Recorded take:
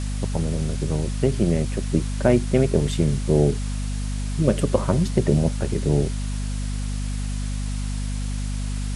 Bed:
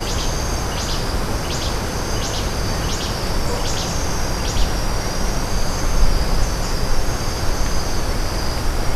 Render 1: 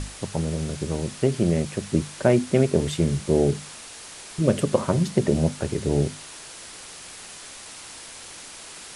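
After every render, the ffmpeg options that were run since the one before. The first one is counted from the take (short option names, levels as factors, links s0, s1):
-af "bandreject=f=50:t=h:w=6,bandreject=f=100:t=h:w=6,bandreject=f=150:t=h:w=6,bandreject=f=200:t=h:w=6,bandreject=f=250:t=h:w=6"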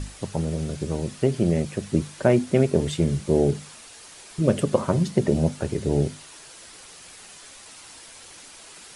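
-af "afftdn=nr=6:nf=-42"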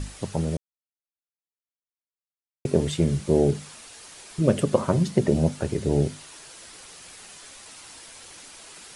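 -filter_complex "[0:a]asplit=3[s0][s1][s2];[s0]atrim=end=0.57,asetpts=PTS-STARTPTS,afade=t=out:st=0.566:d=0.004:c=hsin[s3];[s1]atrim=start=0.57:end=2.65,asetpts=PTS-STARTPTS,volume=0[s4];[s2]atrim=start=2.65,asetpts=PTS-STARTPTS,afade=t=in:d=0.004:c=hsin[s5];[s3][s4][s5]concat=n=3:v=0:a=1"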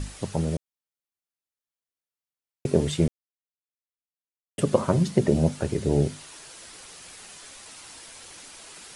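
-filter_complex "[0:a]asplit=3[s0][s1][s2];[s0]atrim=end=3.08,asetpts=PTS-STARTPTS,afade=t=out:st=3.076:d=0.004:c=hsin[s3];[s1]atrim=start=3.08:end=4.58,asetpts=PTS-STARTPTS,volume=0[s4];[s2]atrim=start=4.58,asetpts=PTS-STARTPTS,afade=t=in:d=0.004:c=hsin[s5];[s3][s4][s5]concat=n=3:v=0:a=1"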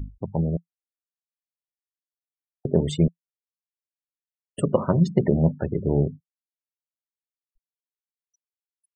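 -af "afftfilt=real='re*gte(hypot(re,im),0.0251)':imag='im*gte(hypot(re,im),0.0251)':win_size=1024:overlap=0.75,adynamicequalizer=threshold=0.0141:dfrequency=170:dqfactor=5.2:tfrequency=170:tqfactor=5.2:attack=5:release=100:ratio=0.375:range=2.5:mode=boostabove:tftype=bell"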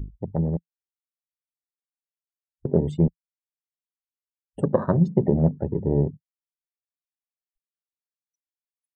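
-af "afwtdn=0.0282"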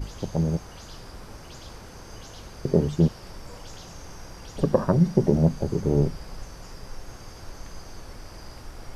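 -filter_complex "[1:a]volume=0.0944[s0];[0:a][s0]amix=inputs=2:normalize=0"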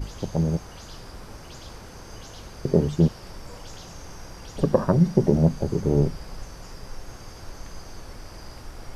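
-af "volume=1.12"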